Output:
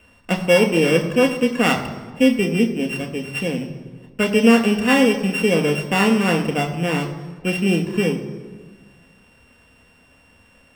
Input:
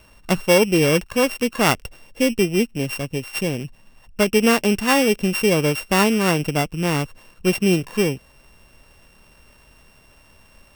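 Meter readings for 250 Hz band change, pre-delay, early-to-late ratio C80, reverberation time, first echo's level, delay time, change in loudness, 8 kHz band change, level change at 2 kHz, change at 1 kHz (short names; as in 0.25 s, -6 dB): +2.5 dB, 3 ms, 11.5 dB, 1.4 s, none, none, +1.0 dB, -5.5 dB, +1.0 dB, -0.5 dB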